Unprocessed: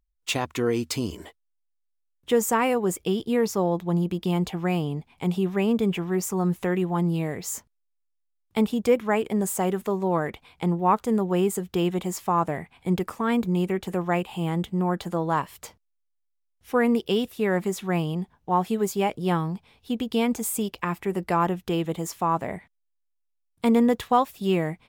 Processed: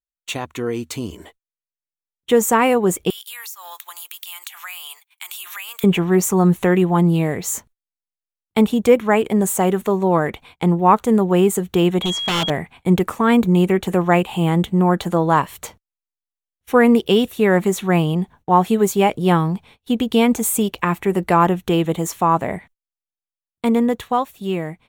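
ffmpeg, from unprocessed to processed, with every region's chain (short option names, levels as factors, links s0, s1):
-filter_complex "[0:a]asettb=1/sr,asplit=3[s0][s1][s2];[s0]atrim=end=3.104[s3];[s1]atrim=start=3.1:end=5.84,asetpts=PTS-STARTPTS,afade=t=in:d=0.004:c=qsin,afade=t=out:st=2.736:d=0.004:c=qsin,highpass=f=1200:w=0.5412,highpass=f=1200:w=1.3066,aemphasis=mode=production:type=riaa,acompressor=threshold=0.0126:ratio=10:attack=3.2:release=140:knee=1:detection=peak[s4];[s2]atrim=start=5.836[s5];[s3][s4]acrossfade=d=0.004:c1=hsin:c2=qsin[s6];[s6][s5]acrossfade=d=0.004:c1=qsin:c2=hsin,asettb=1/sr,asplit=3[s7][s8][s9];[s7]atrim=end=12.024[s10];[s8]atrim=start=12.02:end=12.5,asetpts=PTS-STARTPTS,afade=t=in:d=0.004:c=qsin,afade=t=out:st=0.476:d=0.004:c=qsin,lowpass=5700,aeval=exprs='val(0)+0.0316*sin(2*PI*3300*n/s)':c=same,aeval=exprs='0.0794*(abs(mod(val(0)/0.0794+3,4)-2)-1)':c=same[s11];[s9]atrim=start=12.496[s12];[s10][s11]acrossfade=d=0.004:c1=hsin:c2=qsin[s13];[s13][s12]acrossfade=d=0.004:c1=qsin:c2=hsin,bandreject=f=5000:w=5.3,agate=range=0.0562:threshold=0.00251:ratio=16:detection=peak,dynaudnorm=f=290:g=13:m=3.55"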